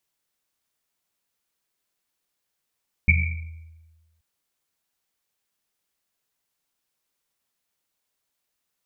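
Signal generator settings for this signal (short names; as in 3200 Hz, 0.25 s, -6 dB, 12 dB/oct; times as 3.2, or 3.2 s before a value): Risset drum length 1.13 s, pitch 81 Hz, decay 1.35 s, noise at 2300 Hz, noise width 190 Hz, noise 40%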